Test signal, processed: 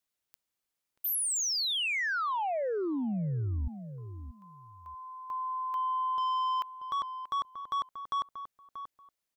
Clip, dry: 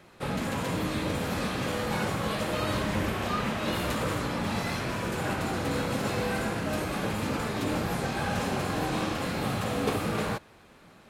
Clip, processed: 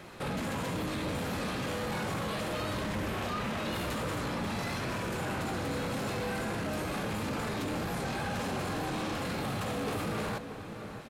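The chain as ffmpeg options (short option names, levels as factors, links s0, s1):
-filter_complex "[0:a]asoftclip=type=tanh:threshold=0.0631,asplit=2[s0][s1];[s1]adelay=634,lowpass=f=1200:p=1,volume=0.126,asplit=2[s2][s3];[s3]adelay=634,lowpass=f=1200:p=1,volume=0.22[s4];[s2][s4]amix=inputs=2:normalize=0[s5];[s0][s5]amix=inputs=2:normalize=0,alimiter=level_in=3.35:limit=0.0631:level=0:latency=1:release=10,volume=0.299,volume=2.11"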